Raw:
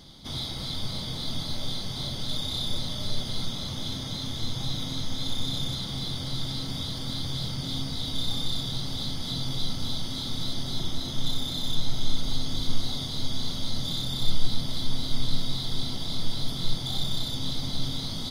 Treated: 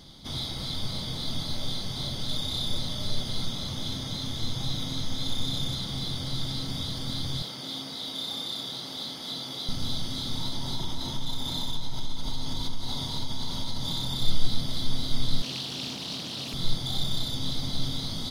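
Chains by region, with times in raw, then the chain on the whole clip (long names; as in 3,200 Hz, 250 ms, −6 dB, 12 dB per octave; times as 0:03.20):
0:07.42–0:09.69: high-pass filter 310 Hz + parametric band 7,400 Hz −3 dB 1.7 octaves
0:10.35–0:14.16: parametric band 930 Hz +12 dB 0.22 octaves + downward compressor 3 to 1, threshold −24 dBFS
0:15.42–0:16.54: high-pass filter 180 Hz + highs frequency-modulated by the lows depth 0.36 ms
whole clip: no processing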